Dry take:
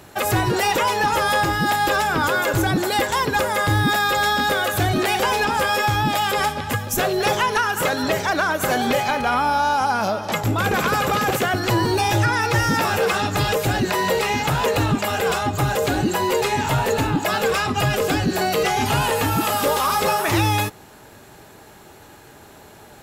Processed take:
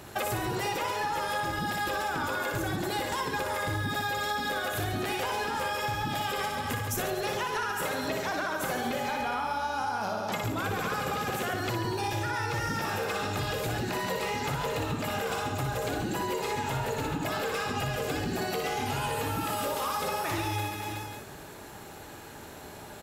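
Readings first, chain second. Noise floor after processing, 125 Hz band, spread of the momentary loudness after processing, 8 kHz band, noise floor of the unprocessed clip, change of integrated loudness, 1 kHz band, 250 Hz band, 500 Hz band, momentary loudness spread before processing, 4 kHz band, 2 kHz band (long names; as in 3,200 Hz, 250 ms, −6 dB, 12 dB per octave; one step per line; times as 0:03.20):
−45 dBFS, −11.0 dB, 2 LU, −10.5 dB, −45 dBFS, −11.0 dB, −11.0 dB, −11.0 dB, −11.0 dB, 2 LU, −11.0 dB, −11.0 dB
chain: reverse bouncing-ball delay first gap 60 ms, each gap 1.3×, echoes 5
downward compressor, threshold −27 dBFS, peak gain reduction 13.5 dB
level −2 dB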